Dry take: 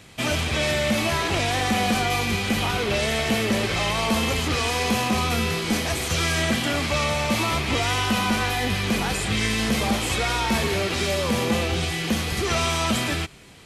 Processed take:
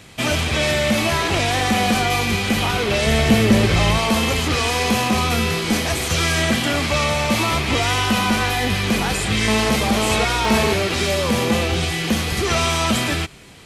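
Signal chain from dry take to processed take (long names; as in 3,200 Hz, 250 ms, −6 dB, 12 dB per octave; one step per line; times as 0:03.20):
0:03.06–0:03.98: low-shelf EQ 270 Hz +9.5 dB
0:09.48–0:10.73: phone interference −26 dBFS
level +4 dB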